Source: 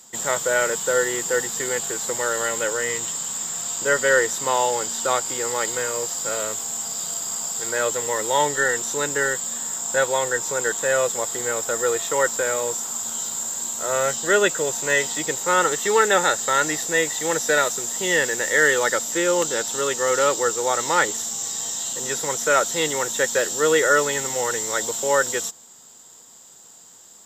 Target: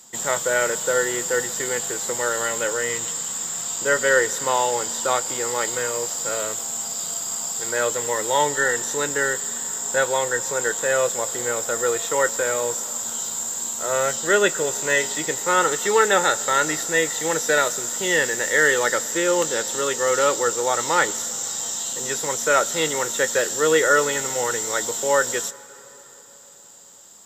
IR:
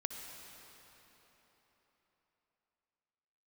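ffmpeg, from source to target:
-filter_complex "[0:a]asplit=2[s0][s1];[1:a]atrim=start_sample=2205,adelay=25[s2];[s1][s2]afir=irnorm=-1:irlink=0,volume=0.188[s3];[s0][s3]amix=inputs=2:normalize=0"

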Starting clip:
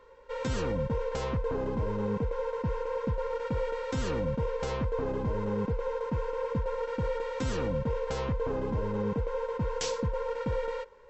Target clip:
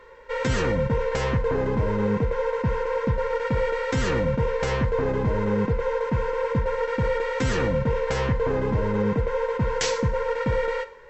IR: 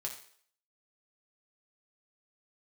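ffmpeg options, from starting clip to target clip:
-filter_complex "[0:a]equalizer=f=1900:w=2.2:g=8,asplit=2[s0][s1];[1:a]atrim=start_sample=2205[s2];[s1][s2]afir=irnorm=-1:irlink=0,volume=0.668[s3];[s0][s3]amix=inputs=2:normalize=0,volume=1.5"

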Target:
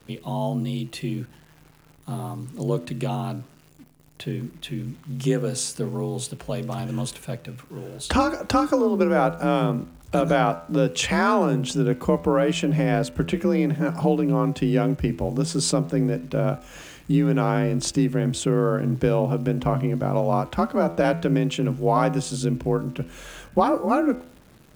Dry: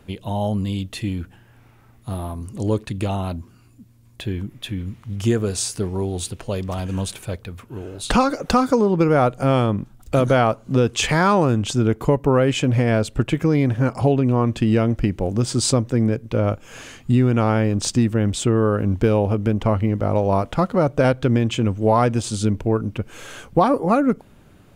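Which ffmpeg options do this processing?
-af "afreqshift=37,acrusher=bits=9:dc=4:mix=0:aa=0.000001,bandreject=f=83.94:t=h:w=4,bandreject=f=167.88:t=h:w=4,bandreject=f=251.82:t=h:w=4,bandreject=f=335.76:t=h:w=4,bandreject=f=419.7:t=h:w=4,bandreject=f=503.64:t=h:w=4,bandreject=f=587.58:t=h:w=4,bandreject=f=671.52:t=h:w=4,bandreject=f=755.46:t=h:w=4,bandreject=f=839.4:t=h:w=4,bandreject=f=923.34:t=h:w=4,bandreject=f=1007.28:t=h:w=4,bandreject=f=1091.22:t=h:w=4,bandreject=f=1175.16:t=h:w=4,bandreject=f=1259.1:t=h:w=4,bandreject=f=1343.04:t=h:w=4,bandreject=f=1426.98:t=h:w=4,bandreject=f=1510.92:t=h:w=4,bandreject=f=1594.86:t=h:w=4,bandreject=f=1678.8:t=h:w=4,bandreject=f=1762.74:t=h:w=4,bandreject=f=1846.68:t=h:w=4,bandreject=f=1930.62:t=h:w=4,bandreject=f=2014.56:t=h:w=4,bandreject=f=2098.5:t=h:w=4,bandreject=f=2182.44:t=h:w=4,bandreject=f=2266.38:t=h:w=4,bandreject=f=2350.32:t=h:w=4,bandreject=f=2434.26:t=h:w=4,bandreject=f=2518.2:t=h:w=4,bandreject=f=2602.14:t=h:w=4,bandreject=f=2686.08:t=h:w=4,bandreject=f=2770.02:t=h:w=4,bandreject=f=2853.96:t=h:w=4,bandreject=f=2937.9:t=h:w=4,volume=0.708"

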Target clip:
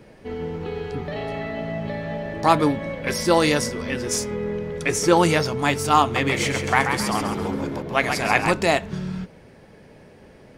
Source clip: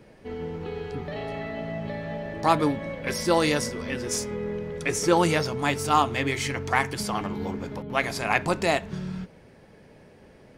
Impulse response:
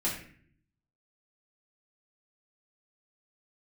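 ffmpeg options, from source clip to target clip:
-filter_complex "[0:a]asettb=1/sr,asplit=3[s0][s1][s2];[s0]atrim=end=6.024[s3];[s1]atrim=start=6.02:end=8.52,asetpts=PTS-STARTPTS,afade=t=in:d=0.004:c=qsin,afade=t=out:st=2.496:d=0.004:c=qsin,asplit=6[s4][s5][s6][s7][s8][s9];[s5]adelay=135,afreqshift=68,volume=0.501[s10];[s6]adelay=270,afreqshift=136,volume=0.207[s11];[s7]adelay=405,afreqshift=204,volume=0.0841[s12];[s8]adelay=540,afreqshift=272,volume=0.0347[s13];[s9]adelay=675,afreqshift=340,volume=0.0141[s14];[s4][s10][s11][s12][s13][s14]amix=inputs=6:normalize=0,atrim=end_sample=110250[s15];[s2]atrim=start=8.516[s16];[s3][s15]acrossfade=d=0.004:c1=hsin:c2=qsin[s17];[s17][s16]acrossfade=d=0.004:c1=qsin:c2=hsin,volume=1.58"

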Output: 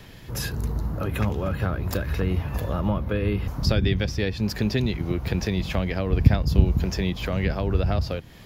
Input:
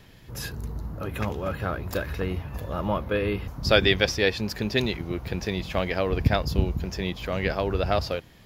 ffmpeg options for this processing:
-filter_complex "[0:a]acrossover=split=240[s0][s1];[s1]acompressor=threshold=0.0178:ratio=5[s2];[s0][s2]amix=inputs=2:normalize=0,volume=2.11"

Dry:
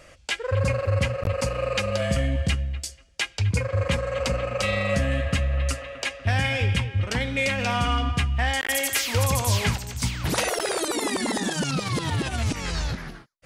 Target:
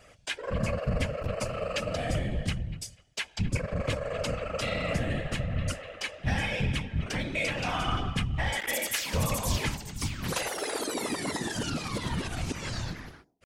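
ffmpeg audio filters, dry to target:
-af "asetrate=45392,aresample=44100,atempo=0.971532,bandreject=f=117.4:t=h:w=4,bandreject=f=234.8:t=h:w=4,bandreject=f=352.2:t=h:w=4,bandreject=f=469.6:t=h:w=4,bandreject=f=587:t=h:w=4,bandreject=f=704.4:t=h:w=4,bandreject=f=821.8:t=h:w=4,bandreject=f=939.2:t=h:w=4,afftfilt=real='hypot(re,im)*cos(2*PI*random(0))':imag='hypot(re,im)*sin(2*PI*random(1))':win_size=512:overlap=0.75"

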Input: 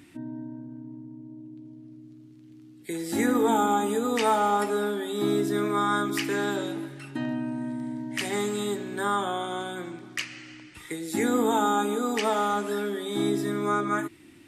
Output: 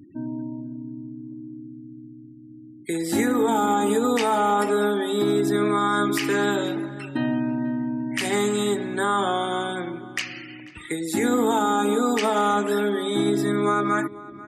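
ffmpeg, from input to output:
-filter_complex "[0:a]afftfilt=real='re*gte(hypot(re,im),0.00562)':imag='im*gte(hypot(re,im),0.00562)':win_size=1024:overlap=0.75,alimiter=limit=0.112:level=0:latency=1:release=62,asplit=2[s0][s1];[s1]adelay=490,lowpass=f=2200:p=1,volume=0.126,asplit=2[s2][s3];[s3]adelay=490,lowpass=f=2200:p=1,volume=0.25[s4];[s0][s2][s4]amix=inputs=3:normalize=0,volume=2"

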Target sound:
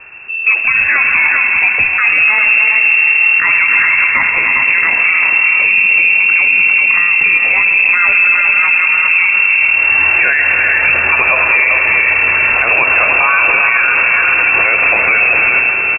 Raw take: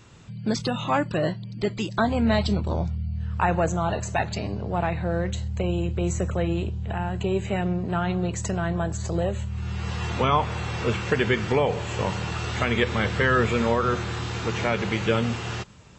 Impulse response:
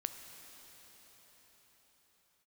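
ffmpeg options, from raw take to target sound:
-filter_complex "[0:a]asettb=1/sr,asplit=3[s0][s1][s2];[s0]atrim=end=4.064[s3];[s1]atrim=start=4.06:end=4.56,asetpts=PTS-STARTPTS,afade=t=in:d=0.004:c=qsin,afade=t=out:st=0.496:d=0.004:c=qsin,highpass=69[s4];[s2]atrim=start=4.556[s5];[s3][s4]acrossfade=d=0.004:c1=hsin:c2=qsin[s6];[s6][s5]acrossfade=d=0.004:c1=qsin:c2=hsin,asettb=1/sr,asplit=3[s7][s8][s9];[s7]atrim=end=7.774[s10];[s8]atrim=start=7.77:end=8.18,asetpts=PTS-STARTPTS,afade=t=in:d=0.004:c=qsin,afade=t=out:st=0.406:d=0.004:c=qsin,acontrast=75[s11];[s9]atrim=start=8.176[s12];[s10][s11]acrossfade=d=0.004:c1=hsin:c2=qsin[s13];[s13][s12]acrossfade=d=0.004:c1=qsin:c2=hsin,aecho=1:1:296|399:0.282|0.447[s14];[1:a]atrim=start_sample=2205[s15];[s14][s15]afir=irnorm=-1:irlink=0,lowpass=f=2400:t=q:w=0.5098,lowpass=f=2400:t=q:w=0.6013,lowpass=f=2400:t=q:w=0.9,lowpass=f=2400:t=q:w=2.563,afreqshift=-2800,alimiter=level_in=7.94:limit=0.891:release=50:level=0:latency=1,volume=0.891"

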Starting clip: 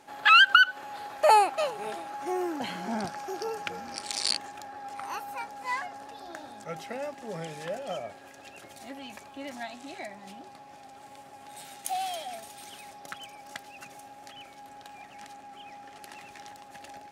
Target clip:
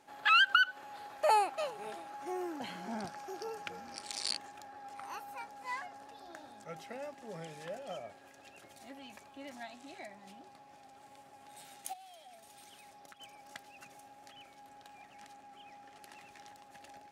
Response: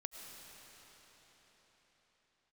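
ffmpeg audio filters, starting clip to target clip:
-filter_complex "[0:a]asplit=3[s0][s1][s2];[s0]afade=t=out:st=11.92:d=0.02[s3];[s1]acompressor=threshold=0.00631:ratio=8,afade=t=in:st=11.92:d=0.02,afade=t=out:st=13.19:d=0.02[s4];[s2]afade=t=in:st=13.19:d=0.02[s5];[s3][s4][s5]amix=inputs=3:normalize=0,volume=0.398"

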